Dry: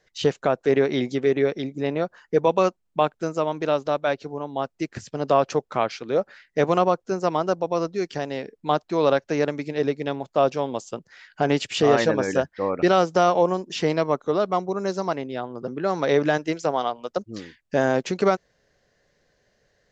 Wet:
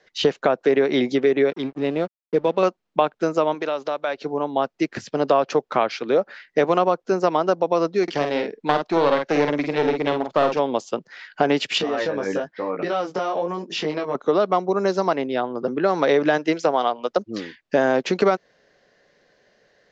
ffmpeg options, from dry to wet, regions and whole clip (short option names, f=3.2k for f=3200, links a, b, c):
-filter_complex "[0:a]asettb=1/sr,asplit=3[a][b][c];[a]atrim=end=1.504[d];[b]atrim=start=1.5:end=2.63,asetpts=PTS-STARTPTS,afade=t=in:d=0.004:c=qsin,afade=t=out:st=1.126:d=0.004:c=qsin,lowpass=4.3k,equalizer=f=1.1k:w=0.53:g=-9,aeval=exprs='sgn(val(0))*max(abs(val(0))-0.00562,0)':c=same[e];[c]atrim=start=2.626[f];[d][e]acrossfade=d=0.004:c1=hsin:c2=qsin[g];[g][f]acrossfade=d=0.004:c1=qsin:c2=hsin,asettb=1/sr,asplit=3[h][i][j];[h]atrim=end=3.544[k];[i]atrim=start=3.54:end=4.21,asetpts=PTS-STARTPTS,afade=t=in:d=0.004:c=qsin,afade=t=out:st=0.666:d=0.004:c=qsin,equalizer=f=120:w=0.37:g=-9,acompressor=threshold=-28dB:ratio=4:attack=3.2:release=140:knee=1:detection=peak[l];[j]atrim=start=4.206[m];[k][l]acrossfade=d=0.004:c1=hsin:c2=qsin[n];[n][m]acrossfade=d=0.004:c1=qsin:c2=hsin,asettb=1/sr,asplit=3[o][p][q];[o]atrim=end=8.034[r];[p]atrim=start=8.03:end=10.59,asetpts=PTS-STARTPTS,afade=t=in:d=0.004:c=qsin,afade=t=out:st=2.556:d=0.004:c=qsin,aeval=exprs='clip(val(0),-1,0.0447)':c=same,asplit=2[s][t];[t]adelay=48,volume=-6dB[u];[s][u]amix=inputs=2:normalize=0,atrim=end_sample=112896[v];[q]atrim=start=10.586[w];[r][v]acrossfade=d=0.004:c1=hsin:c2=qsin[x];[x][w]acrossfade=d=0.004:c1=qsin:c2=hsin,asettb=1/sr,asplit=3[y][z][aa];[y]atrim=end=11.784[ab];[z]atrim=start=11.78:end=14.15,asetpts=PTS-STARTPTS,afade=t=in:d=0.004:c=qsin,afade=t=out:st=2.366:d=0.004:c=qsin,acompressor=threshold=-24dB:ratio=5:attack=3.2:release=140:knee=1:detection=peak,flanger=delay=17:depth=4.1:speed=1.1[ac];[aa]atrim=start=14.146[ad];[ab][ac]acrossfade=d=0.004:c1=hsin:c2=qsin[ae];[ae][ad]acrossfade=d=0.004:c1=qsin:c2=hsin,acrossover=split=180 5900:gain=0.178 1 0.0891[af][ag][ah];[af][ag][ah]amix=inputs=3:normalize=0,acompressor=threshold=-23dB:ratio=3,volume=7.5dB"